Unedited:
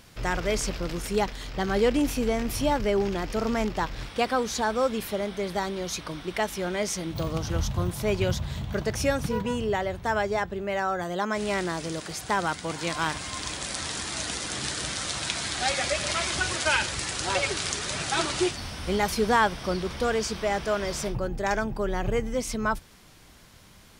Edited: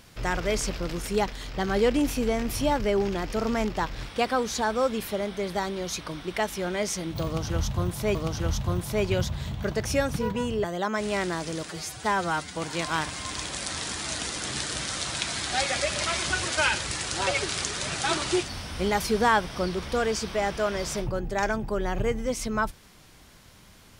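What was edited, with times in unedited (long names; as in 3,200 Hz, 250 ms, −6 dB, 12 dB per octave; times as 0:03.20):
0:07.25–0:08.15: repeat, 2 plays
0:09.74–0:11.01: remove
0:12.05–0:12.63: time-stretch 1.5×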